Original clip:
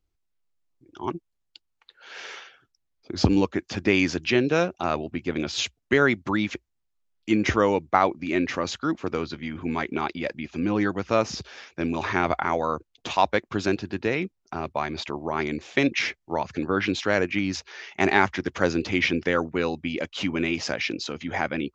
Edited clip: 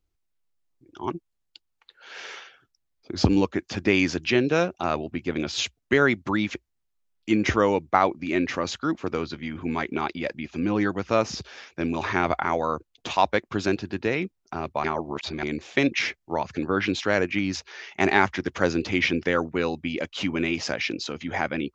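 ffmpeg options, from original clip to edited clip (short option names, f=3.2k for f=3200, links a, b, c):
-filter_complex "[0:a]asplit=3[a][b][c];[a]atrim=end=14.842[d];[b]atrim=start=14.838:end=15.432,asetpts=PTS-STARTPTS,areverse[e];[c]atrim=start=15.428[f];[d][e]acrossfade=d=0.004:c1=hsin:c2=hsin[g];[g][f]acrossfade=d=0.004:c1=hsin:c2=hsin"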